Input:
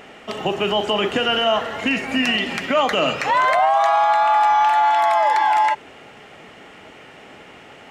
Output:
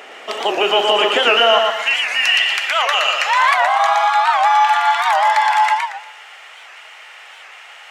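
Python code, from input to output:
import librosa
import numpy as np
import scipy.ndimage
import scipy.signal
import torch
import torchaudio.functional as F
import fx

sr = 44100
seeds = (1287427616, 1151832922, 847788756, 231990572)

y = fx.bessel_highpass(x, sr, hz=fx.steps((0.0, 500.0), (1.58, 1200.0)), order=4)
y = fx.echo_feedback(y, sr, ms=118, feedback_pct=35, wet_db=-3.5)
y = fx.record_warp(y, sr, rpm=78.0, depth_cents=160.0)
y = F.gain(torch.from_numpy(y), 6.0).numpy()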